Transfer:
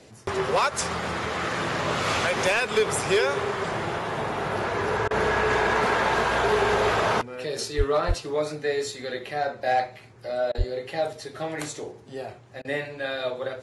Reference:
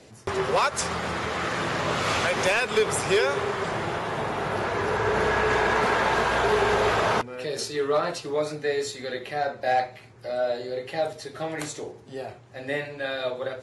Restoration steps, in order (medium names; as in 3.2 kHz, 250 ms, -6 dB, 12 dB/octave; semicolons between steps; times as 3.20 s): 7.77–7.89 s: high-pass 140 Hz 24 dB/octave; 8.07–8.19 s: high-pass 140 Hz 24 dB/octave; 10.57–10.69 s: high-pass 140 Hz 24 dB/octave; interpolate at 5.08/10.52/12.62 s, 26 ms